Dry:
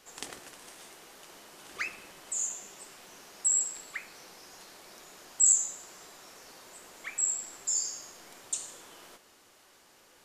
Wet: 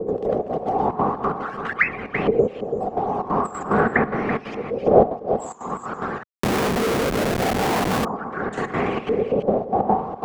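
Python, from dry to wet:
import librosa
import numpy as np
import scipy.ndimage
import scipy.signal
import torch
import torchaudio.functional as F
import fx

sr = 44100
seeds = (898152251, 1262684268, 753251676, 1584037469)

p1 = fx.hpss_only(x, sr, part='percussive')
p2 = fx.dmg_wind(p1, sr, seeds[0], corner_hz=550.0, level_db=-37.0)
p3 = fx.quant_companded(p2, sr, bits=4)
p4 = p2 + (p3 * 10.0 ** (-5.5 / 20.0))
p5 = fx.filter_lfo_lowpass(p4, sr, shape='saw_up', hz=0.44, low_hz=440.0, high_hz=2700.0, q=5.2)
p6 = fx.step_gate(p5, sr, bpm=182, pattern='.x.xx.x.xxx.xx', floor_db=-12.0, edge_ms=4.5)
p7 = fx.small_body(p6, sr, hz=(210.0, 420.0, 750.0, 1100.0), ring_ms=25, db=11)
p8 = p7 + fx.echo_single(p7, sr, ms=333, db=-14.0, dry=0)
p9 = fx.rider(p8, sr, range_db=4, speed_s=2.0)
p10 = fx.schmitt(p9, sr, flips_db=-30.5, at=(6.23, 8.05))
p11 = fx.low_shelf(p10, sr, hz=79.0, db=-10.0)
p12 = fx.band_squash(p11, sr, depth_pct=70)
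y = p12 * 10.0 ** (1.5 / 20.0)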